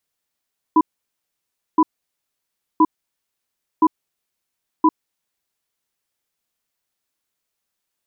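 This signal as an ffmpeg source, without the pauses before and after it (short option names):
-f lavfi -i "aevalsrc='0.251*(sin(2*PI*314*t)+sin(2*PI*994*t))*clip(min(mod(t,1.02),0.05-mod(t,1.02))/0.005,0,1)':d=4.62:s=44100"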